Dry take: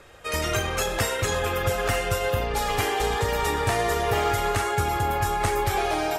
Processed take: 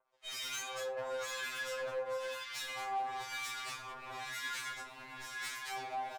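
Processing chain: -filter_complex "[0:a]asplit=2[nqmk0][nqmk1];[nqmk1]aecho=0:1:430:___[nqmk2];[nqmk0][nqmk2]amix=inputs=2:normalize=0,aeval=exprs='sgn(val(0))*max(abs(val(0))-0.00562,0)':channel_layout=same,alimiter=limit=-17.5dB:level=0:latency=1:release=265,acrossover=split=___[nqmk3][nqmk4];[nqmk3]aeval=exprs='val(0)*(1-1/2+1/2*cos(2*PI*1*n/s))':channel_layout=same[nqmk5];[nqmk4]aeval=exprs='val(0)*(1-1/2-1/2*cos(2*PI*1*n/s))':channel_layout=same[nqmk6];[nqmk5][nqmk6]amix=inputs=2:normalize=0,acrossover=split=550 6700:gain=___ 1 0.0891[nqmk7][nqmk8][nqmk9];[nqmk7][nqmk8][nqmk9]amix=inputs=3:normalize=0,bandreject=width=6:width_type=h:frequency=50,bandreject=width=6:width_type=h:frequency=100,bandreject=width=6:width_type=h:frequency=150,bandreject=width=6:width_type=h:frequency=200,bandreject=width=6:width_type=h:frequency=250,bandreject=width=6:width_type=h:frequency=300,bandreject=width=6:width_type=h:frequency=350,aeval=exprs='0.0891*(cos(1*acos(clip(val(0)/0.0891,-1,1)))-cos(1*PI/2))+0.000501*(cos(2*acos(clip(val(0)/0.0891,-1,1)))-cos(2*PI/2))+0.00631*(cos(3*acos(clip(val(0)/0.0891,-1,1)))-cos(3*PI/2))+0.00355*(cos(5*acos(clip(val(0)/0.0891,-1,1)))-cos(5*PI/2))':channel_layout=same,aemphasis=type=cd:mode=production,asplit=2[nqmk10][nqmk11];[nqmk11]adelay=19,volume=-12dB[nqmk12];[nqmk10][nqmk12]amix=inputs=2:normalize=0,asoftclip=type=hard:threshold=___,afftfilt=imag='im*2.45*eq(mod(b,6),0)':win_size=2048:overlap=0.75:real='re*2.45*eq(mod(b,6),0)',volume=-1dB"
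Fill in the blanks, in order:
0.0841, 1200, 0.0708, -34.5dB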